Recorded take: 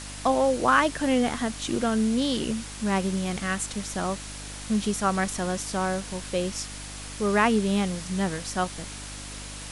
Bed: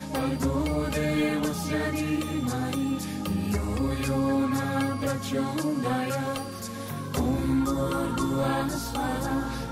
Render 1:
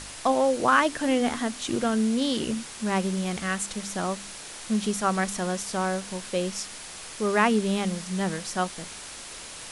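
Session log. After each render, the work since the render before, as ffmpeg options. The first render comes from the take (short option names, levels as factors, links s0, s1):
-af "bandreject=f=50:t=h:w=4,bandreject=f=100:t=h:w=4,bandreject=f=150:t=h:w=4,bandreject=f=200:t=h:w=4,bandreject=f=250:t=h:w=4,bandreject=f=300:t=h:w=4"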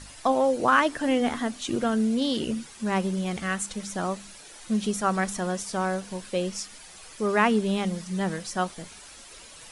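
-af "afftdn=nr=10:nf=-41"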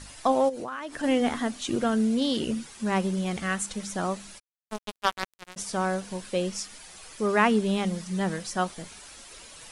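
-filter_complex "[0:a]asplit=3[s0][s1][s2];[s0]afade=t=out:st=0.48:d=0.02[s3];[s1]acompressor=threshold=0.0282:ratio=10:attack=3.2:release=140:knee=1:detection=peak,afade=t=in:st=0.48:d=0.02,afade=t=out:st=1.02:d=0.02[s4];[s2]afade=t=in:st=1.02:d=0.02[s5];[s3][s4][s5]amix=inputs=3:normalize=0,asplit=3[s6][s7][s8];[s6]afade=t=out:st=4.38:d=0.02[s9];[s7]acrusher=bits=2:mix=0:aa=0.5,afade=t=in:st=4.38:d=0.02,afade=t=out:st=5.56:d=0.02[s10];[s8]afade=t=in:st=5.56:d=0.02[s11];[s9][s10][s11]amix=inputs=3:normalize=0"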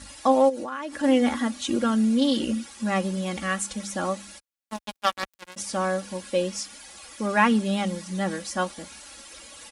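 -af "highpass=50,aecho=1:1:3.6:0.74"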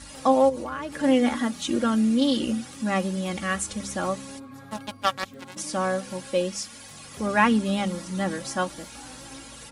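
-filter_complex "[1:a]volume=0.141[s0];[0:a][s0]amix=inputs=2:normalize=0"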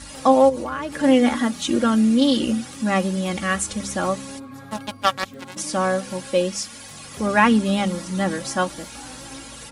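-af "volume=1.68,alimiter=limit=0.708:level=0:latency=1"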